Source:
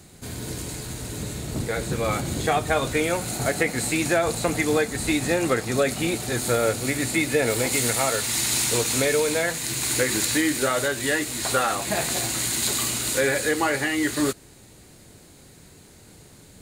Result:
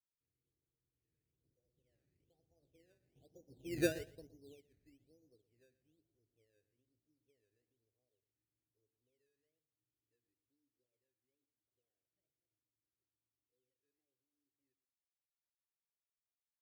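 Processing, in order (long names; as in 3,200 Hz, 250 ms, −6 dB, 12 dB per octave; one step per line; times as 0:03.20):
source passing by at 0:03.83, 24 m/s, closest 1.5 metres
inverse Chebyshev low-pass filter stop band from 2,900 Hz, stop band 80 dB
parametric band 210 Hz −13.5 dB 0.34 octaves
sample-and-hold swept by an LFO 14×, swing 100% 1.1 Hz
repeating echo 118 ms, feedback 24%, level −13.5 dB
expander for the loud parts 1.5 to 1, over −58 dBFS
level −4.5 dB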